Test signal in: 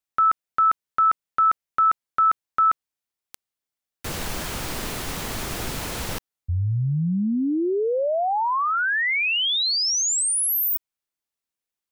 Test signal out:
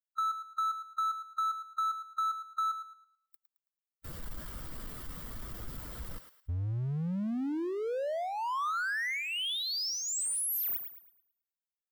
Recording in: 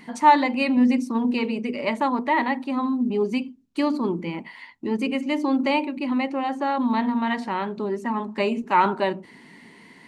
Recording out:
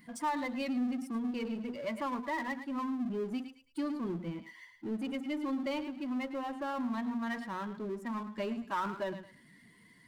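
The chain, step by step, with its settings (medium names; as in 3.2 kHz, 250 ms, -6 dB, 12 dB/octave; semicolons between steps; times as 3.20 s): expander on every frequency bin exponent 1.5; graphic EQ with 31 bands 400 Hz -5 dB, 800 Hz -8 dB, 1.25 kHz +4 dB, 2.5 kHz -9 dB, 4 kHz -5 dB, 6.3 kHz -9 dB; compression 2.5:1, threshold -26 dBFS; on a send: thinning echo 109 ms, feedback 22%, high-pass 900 Hz, level -12 dB; on the sum: power-law waveshaper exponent 0.7; trim -9 dB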